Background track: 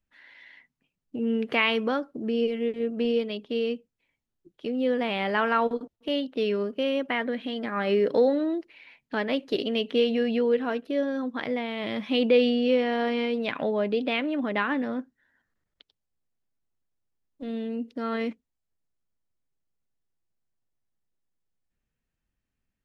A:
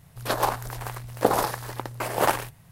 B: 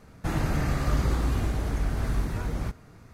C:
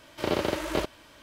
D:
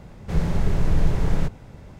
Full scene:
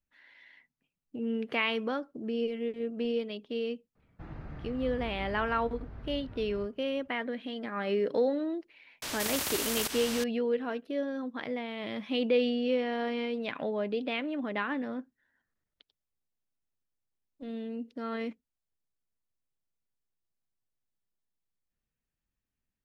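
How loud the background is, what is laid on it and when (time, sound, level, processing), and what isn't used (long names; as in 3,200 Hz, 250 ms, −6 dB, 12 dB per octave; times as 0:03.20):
background track −6 dB
0:03.95: mix in B −16.5 dB + high-frequency loss of the air 330 metres
0:09.02: mix in C −5.5 dB + every bin compressed towards the loudest bin 10 to 1
not used: A, D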